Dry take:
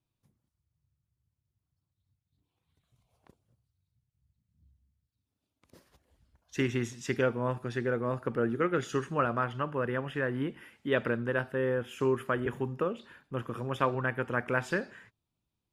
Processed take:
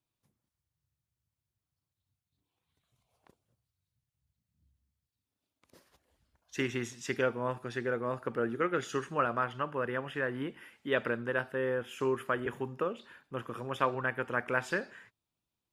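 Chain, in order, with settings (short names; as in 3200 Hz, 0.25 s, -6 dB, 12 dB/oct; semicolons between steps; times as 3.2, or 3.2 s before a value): low shelf 270 Hz -8.5 dB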